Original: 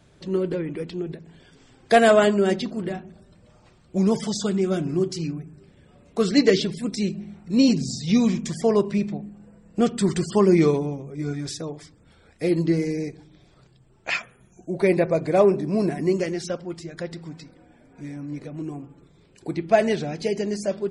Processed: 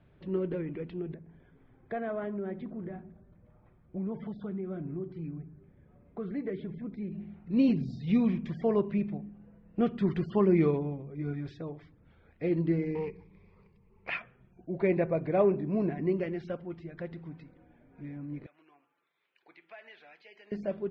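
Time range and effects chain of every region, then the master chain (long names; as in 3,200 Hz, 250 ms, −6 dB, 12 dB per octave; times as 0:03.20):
0:01.14–0:07.12: downward compressor 2 to 1, threshold −30 dBFS + high-frequency loss of the air 410 metres + notch filter 2,800 Hz, Q 5.9
0:12.95–0:14.09: phase distortion by the signal itself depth 0.34 ms + EQ curve with evenly spaced ripples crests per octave 0.85, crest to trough 15 dB
0:18.46–0:20.52: high-pass filter 1,400 Hz + downward compressor 2.5 to 1, threshold −42 dBFS
whole clip: low-pass filter 2,900 Hz 24 dB per octave; low-shelf EQ 190 Hz +5 dB; level −8.5 dB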